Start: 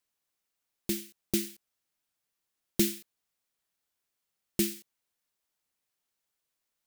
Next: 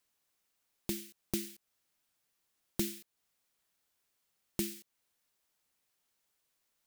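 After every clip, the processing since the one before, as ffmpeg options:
-af "acompressor=threshold=-44dB:ratio=2,volume=4dB"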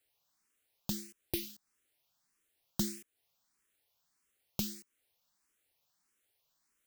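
-filter_complex "[0:a]asplit=2[a][b];[b]afreqshift=1.6[c];[a][c]amix=inputs=2:normalize=1,volume=3.5dB"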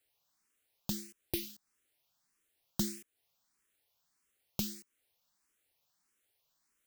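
-af anull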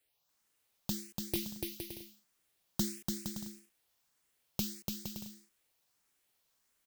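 -af "aecho=1:1:290|464|568.4|631|668.6:0.631|0.398|0.251|0.158|0.1"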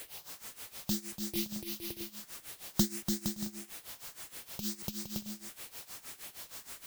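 -af "aeval=exprs='val(0)+0.5*0.00708*sgn(val(0))':c=same,tremolo=f=6.4:d=0.85,volume=5dB"

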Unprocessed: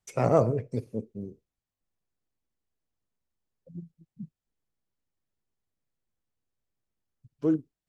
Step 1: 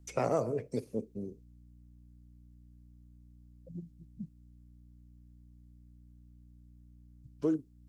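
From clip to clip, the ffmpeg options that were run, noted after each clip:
-filter_complex "[0:a]aeval=exprs='val(0)+0.00141*(sin(2*PI*60*n/s)+sin(2*PI*2*60*n/s)/2+sin(2*PI*3*60*n/s)/3+sin(2*PI*4*60*n/s)/4+sin(2*PI*5*60*n/s)/5)':c=same,bass=f=250:g=2,treble=f=4k:g=5,acrossover=split=230|5400[a][b][c];[a]acompressor=threshold=-45dB:ratio=4[d];[b]acompressor=threshold=-27dB:ratio=4[e];[c]acompressor=threshold=-54dB:ratio=4[f];[d][e][f]amix=inputs=3:normalize=0"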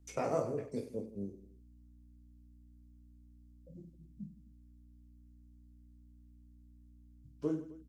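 -af "aecho=1:1:20|50|95|162.5|263.8:0.631|0.398|0.251|0.158|0.1,volume=-5.5dB"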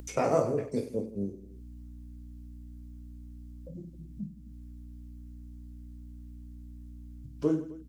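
-af "acompressor=mode=upward:threshold=-46dB:ratio=2.5,volume=7.5dB"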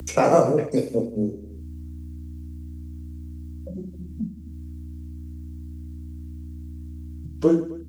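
-af "afreqshift=16,volume=9dB"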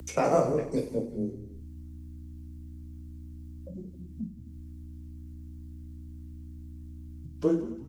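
-filter_complex "[0:a]asplit=5[a][b][c][d][e];[b]adelay=180,afreqshift=-100,volume=-15dB[f];[c]adelay=360,afreqshift=-200,volume=-22.5dB[g];[d]adelay=540,afreqshift=-300,volume=-30.1dB[h];[e]adelay=720,afreqshift=-400,volume=-37.6dB[i];[a][f][g][h][i]amix=inputs=5:normalize=0,volume=-7dB"

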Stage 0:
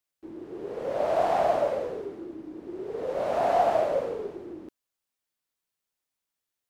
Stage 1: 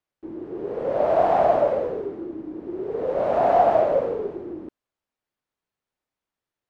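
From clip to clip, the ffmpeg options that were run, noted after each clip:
-af "lowpass=f=1.3k:p=1,volume=6.5dB"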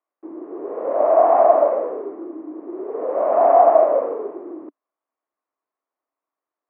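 -af "highpass=f=280:w=0.5412,highpass=f=280:w=1.3066,equalizer=f=290:t=q:w=4:g=5,equalizer=f=660:t=q:w=4:g=7,equalizer=f=1.1k:t=q:w=4:g=10,equalizer=f=1.6k:t=q:w=4:g=-3,lowpass=f=2.1k:w=0.5412,lowpass=f=2.1k:w=1.3066,volume=-1dB"

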